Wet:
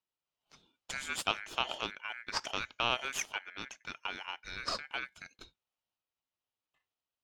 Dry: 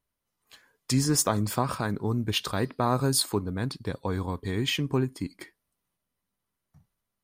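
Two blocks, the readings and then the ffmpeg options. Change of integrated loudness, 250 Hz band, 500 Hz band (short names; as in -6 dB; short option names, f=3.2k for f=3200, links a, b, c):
-9.0 dB, -23.5 dB, -14.0 dB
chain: -filter_complex "[0:a]aeval=exprs='0.335*(cos(1*acos(clip(val(0)/0.335,-1,1)))-cos(1*PI/2))+0.0335*(cos(3*acos(clip(val(0)/0.335,-1,1)))-cos(3*PI/2))+0.0473*(cos(4*acos(clip(val(0)/0.335,-1,1)))-cos(4*PI/2))':c=same,acrossover=split=440 5200:gain=0.0891 1 0.0891[a][b][c];[a][b][c]amix=inputs=3:normalize=0,aeval=exprs='val(0)*sin(2*PI*1900*n/s)':c=same"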